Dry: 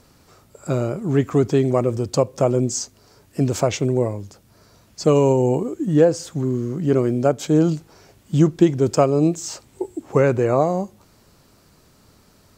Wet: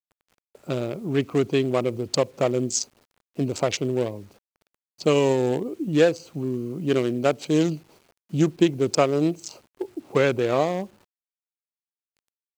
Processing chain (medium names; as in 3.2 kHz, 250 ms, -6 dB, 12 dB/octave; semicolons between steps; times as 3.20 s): local Wiener filter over 25 samples; frequency weighting D; gate -50 dBFS, range -6 dB; 5.66–8.35 s: treble shelf 2.1 kHz +5.5 dB; bit crusher 9-bit; trim -3 dB